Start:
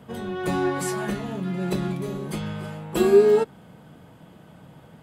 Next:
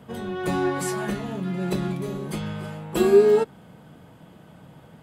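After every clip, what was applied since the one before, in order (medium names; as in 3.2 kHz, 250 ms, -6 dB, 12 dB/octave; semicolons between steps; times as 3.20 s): no audible change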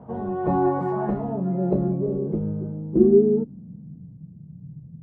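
bass shelf 430 Hz +5.5 dB; low-pass sweep 850 Hz -> 150 Hz, 1.09–4.28 s; trim -2 dB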